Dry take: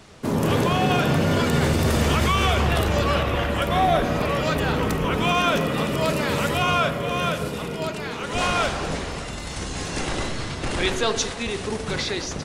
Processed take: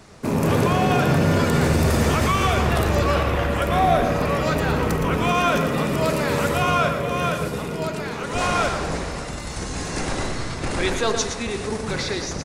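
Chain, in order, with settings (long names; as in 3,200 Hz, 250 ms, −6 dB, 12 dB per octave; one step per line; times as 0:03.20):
loose part that buzzes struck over −25 dBFS, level −26 dBFS
parametric band 3,100 Hz −6 dB 0.62 octaves
single-tap delay 116 ms −8.5 dB
level +1 dB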